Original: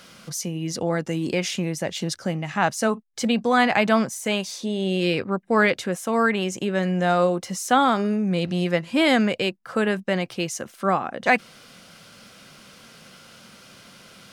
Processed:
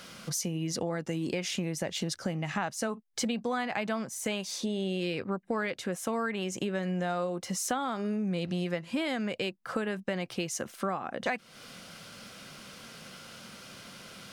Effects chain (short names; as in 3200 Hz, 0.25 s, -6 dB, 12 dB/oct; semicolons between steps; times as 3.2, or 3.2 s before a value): compressor 6:1, threshold -29 dBFS, peak gain reduction 15.5 dB